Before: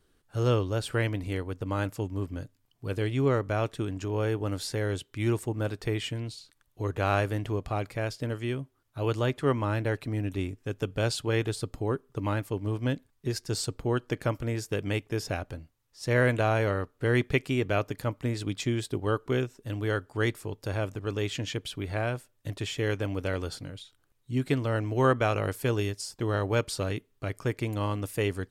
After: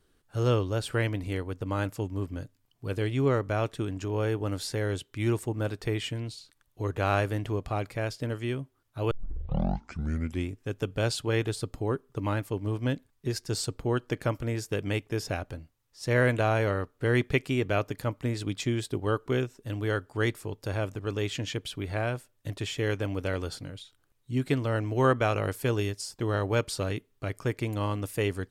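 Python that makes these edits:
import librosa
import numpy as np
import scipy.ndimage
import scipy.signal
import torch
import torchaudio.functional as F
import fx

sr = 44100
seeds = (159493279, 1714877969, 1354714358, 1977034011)

y = fx.edit(x, sr, fx.tape_start(start_s=9.11, length_s=1.37), tone=tone)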